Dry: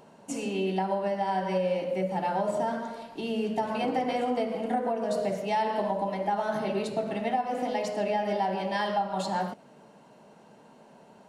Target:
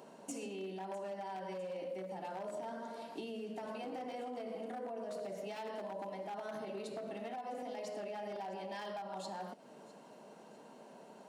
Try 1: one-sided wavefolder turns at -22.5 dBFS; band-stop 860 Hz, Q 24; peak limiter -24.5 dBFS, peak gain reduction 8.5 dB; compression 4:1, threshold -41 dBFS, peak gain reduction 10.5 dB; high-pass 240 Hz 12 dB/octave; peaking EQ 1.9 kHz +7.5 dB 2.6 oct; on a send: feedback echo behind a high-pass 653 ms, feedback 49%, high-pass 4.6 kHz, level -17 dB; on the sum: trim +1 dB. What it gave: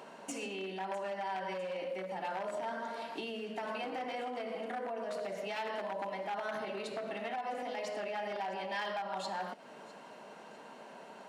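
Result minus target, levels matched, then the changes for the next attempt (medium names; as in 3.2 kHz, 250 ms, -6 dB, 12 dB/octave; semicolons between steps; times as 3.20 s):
2 kHz band +6.0 dB
change: peaking EQ 1.9 kHz -3.5 dB 2.6 oct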